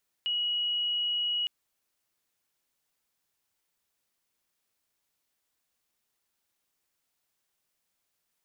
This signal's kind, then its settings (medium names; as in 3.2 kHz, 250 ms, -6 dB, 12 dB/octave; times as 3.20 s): tone sine 2.91 kHz -26.5 dBFS 1.21 s